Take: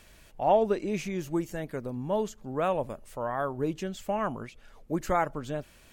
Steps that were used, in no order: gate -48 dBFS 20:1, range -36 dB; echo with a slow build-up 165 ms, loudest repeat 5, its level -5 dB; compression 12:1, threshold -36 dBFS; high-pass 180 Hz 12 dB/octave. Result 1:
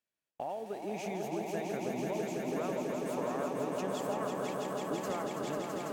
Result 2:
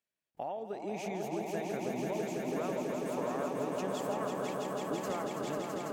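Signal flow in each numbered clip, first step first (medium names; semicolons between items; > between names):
high-pass > compression > echo with a slow build-up > gate; gate > high-pass > compression > echo with a slow build-up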